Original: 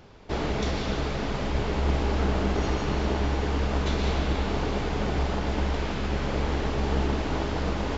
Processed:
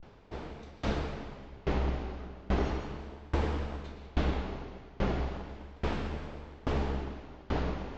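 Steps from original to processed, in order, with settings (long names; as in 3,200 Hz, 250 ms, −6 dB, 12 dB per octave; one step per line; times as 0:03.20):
pitch vibrato 0.36 Hz 97 cents
low-pass filter 3,100 Hz 6 dB per octave
tremolo with a ramp in dB decaying 1.2 Hz, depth 26 dB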